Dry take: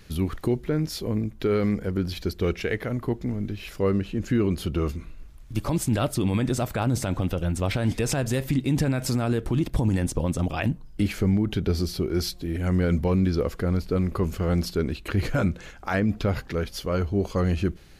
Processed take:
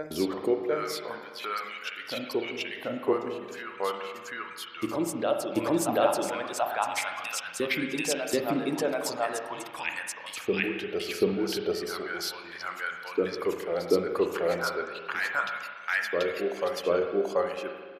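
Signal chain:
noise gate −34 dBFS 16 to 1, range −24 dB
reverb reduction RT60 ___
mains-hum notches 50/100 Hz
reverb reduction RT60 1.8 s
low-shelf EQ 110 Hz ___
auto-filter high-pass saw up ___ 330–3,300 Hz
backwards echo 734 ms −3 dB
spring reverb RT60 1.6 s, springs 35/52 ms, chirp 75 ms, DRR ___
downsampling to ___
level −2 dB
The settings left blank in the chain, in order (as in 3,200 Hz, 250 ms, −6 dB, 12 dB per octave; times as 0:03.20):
0.69 s, +10.5 dB, 0.36 Hz, 4 dB, 32,000 Hz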